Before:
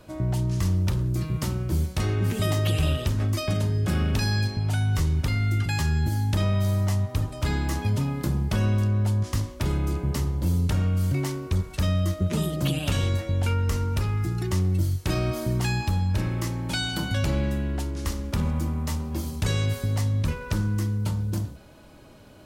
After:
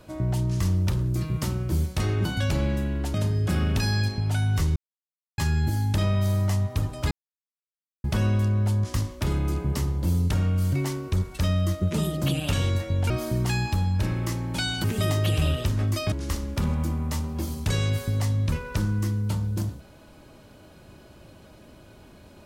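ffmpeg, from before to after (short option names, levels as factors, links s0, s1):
-filter_complex "[0:a]asplit=10[s0][s1][s2][s3][s4][s5][s6][s7][s8][s9];[s0]atrim=end=2.252[s10];[s1]atrim=start=16.988:end=17.882[s11];[s2]atrim=start=3.528:end=5.15,asetpts=PTS-STARTPTS,afade=t=out:st=1.618:d=0.004:c=hsin[s12];[s3]atrim=start=5.15:end=5.77,asetpts=PTS-STARTPTS,volume=0[s13];[s4]atrim=start=5.77:end=7.5,asetpts=PTS-STARTPTS,afade=t=in:d=0.004:c=hsin,afade=t=out:st=1.726:d=0.004:c=hsin[s14];[s5]atrim=start=7.5:end=8.43,asetpts=PTS-STARTPTS,volume=0[s15];[s6]atrim=start=8.43:end=13.492,asetpts=PTS-STARTPTS,afade=t=in:d=0.004:c=hsin[s16];[s7]atrim=start=15.248:end=16.992[s17];[s8]atrim=start=2.248:end=3.532[s18];[s9]atrim=start=17.878[s19];[s10][s11]acrossfade=d=0.004:c1=hsin:c2=hsin[s20];[s12][s13][s14][s15][s16]concat=n=5:v=0:a=1[s21];[s20][s21]acrossfade=d=0.004:c1=hsin:c2=hsin[s22];[s22][s17]acrossfade=d=0.004:c1=hsin:c2=hsin[s23];[s23][s18]acrossfade=d=0.004:c1=hsin:c2=hsin[s24];[s24][s19]acrossfade=d=0.004:c1=hsin:c2=hsin"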